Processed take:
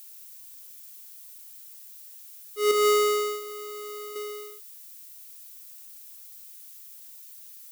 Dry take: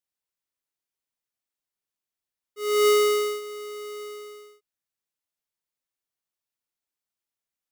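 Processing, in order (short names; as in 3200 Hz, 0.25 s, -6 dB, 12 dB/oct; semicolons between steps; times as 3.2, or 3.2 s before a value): 2.71–4.16 resonator 78 Hz, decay 0.36 s, harmonics all, mix 70%; added noise violet -52 dBFS; gain +5.5 dB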